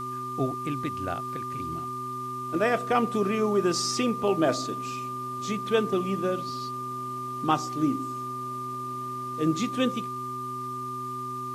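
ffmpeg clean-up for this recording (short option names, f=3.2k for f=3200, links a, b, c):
-af "bandreject=f=125.9:t=h:w=4,bandreject=f=251.8:t=h:w=4,bandreject=f=377.7:t=h:w=4,bandreject=f=1.2k:w=30,afwtdn=0.0022"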